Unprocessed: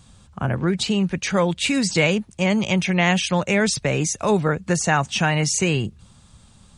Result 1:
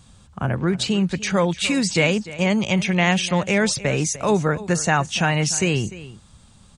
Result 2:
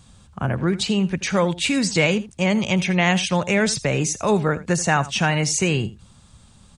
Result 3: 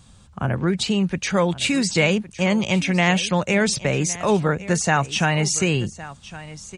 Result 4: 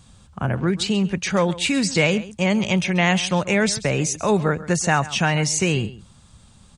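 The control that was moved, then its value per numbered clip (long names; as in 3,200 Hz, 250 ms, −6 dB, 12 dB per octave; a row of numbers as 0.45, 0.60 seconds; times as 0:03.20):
single-tap delay, delay time: 298, 82, 1,111, 135 milliseconds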